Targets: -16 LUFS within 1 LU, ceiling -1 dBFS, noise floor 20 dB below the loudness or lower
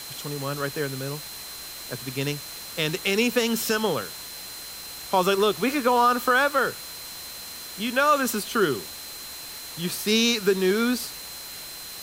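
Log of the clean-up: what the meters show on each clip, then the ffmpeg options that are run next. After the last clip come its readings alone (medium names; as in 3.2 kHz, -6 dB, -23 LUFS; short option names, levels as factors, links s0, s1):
steady tone 4.1 kHz; tone level -41 dBFS; noise floor -39 dBFS; noise floor target -46 dBFS; loudness -25.5 LUFS; peak level -9.5 dBFS; loudness target -16.0 LUFS
-> -af "bandreject=f=4100:w=30"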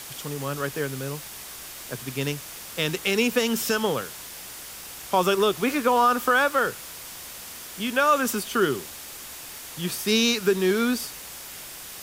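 steady tone not found; noise floor -40 dBFS; noise floor target -45 dBFS
-> -af "afftdn=nr=6:nf=-40"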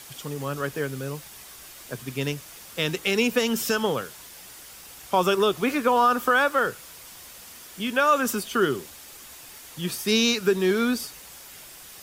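noise floor -45 dBFS; loudness -24.0 LUFS; peak level -9.5 dBFS; loudness target -16.0 LUFS
-> -af "volume=2.51"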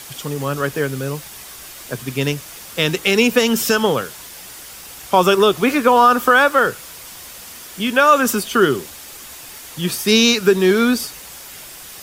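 loudness -16.0 LUFS; peak level -1.5 dBFS; noise floor -37 dBFS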